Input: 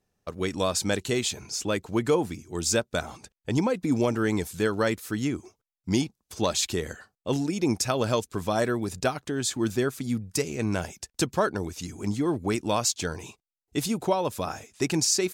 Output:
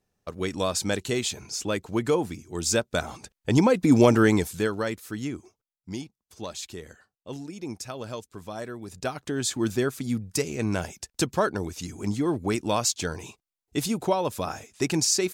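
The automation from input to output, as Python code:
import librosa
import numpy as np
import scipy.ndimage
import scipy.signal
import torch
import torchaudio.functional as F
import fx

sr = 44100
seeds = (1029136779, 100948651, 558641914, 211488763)

y = fx.gain(x, sr, db=fx.line((2.55, -0.5), (4.16, 8.0), (4.85, -4.0), (5.37, -4.0), (5.98, -10.5), (8.79, -10.5), (9.29, 0.5)))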